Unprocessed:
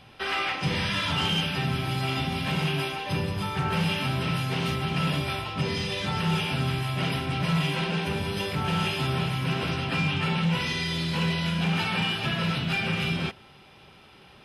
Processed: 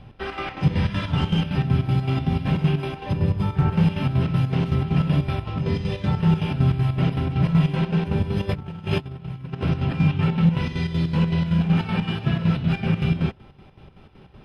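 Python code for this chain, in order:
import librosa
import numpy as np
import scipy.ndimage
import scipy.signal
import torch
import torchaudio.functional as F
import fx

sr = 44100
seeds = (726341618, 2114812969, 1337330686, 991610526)

y = fx.tilt_eq(x, sr, slope=-3.5)
y = fx.over_compress(y, sr, threshold_db=-25.0, ratio=-0.5, at=(8.47, 9.61), fade=0.02)
y = fx.chopper(y, sr, hz=5.3, depth_pct=60, duty_pct=60)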